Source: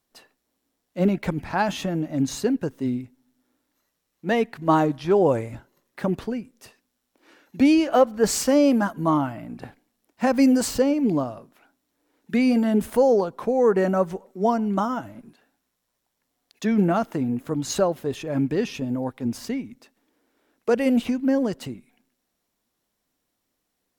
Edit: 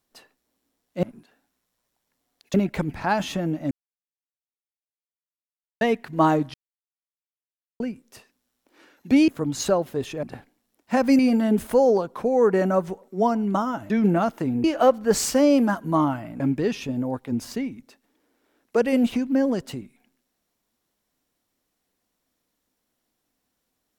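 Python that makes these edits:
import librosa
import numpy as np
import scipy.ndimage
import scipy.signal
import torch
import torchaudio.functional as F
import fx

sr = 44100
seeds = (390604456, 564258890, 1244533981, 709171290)

y = fx.edit(x, sr, fx.silence(start_s=2.2, length_s=2.1),
    fx.silence(start_s=5.03, length_s=1.26),
    fx.swap(start_s=7.77, length_s=1.76, other_s=17.38, other_length_s=0.95),
    fx.cut(start_s=10.49, length_s=1.93),
    fx.move(start_s=15.13, length_s=1.51, to_s=1.03), tone=tone)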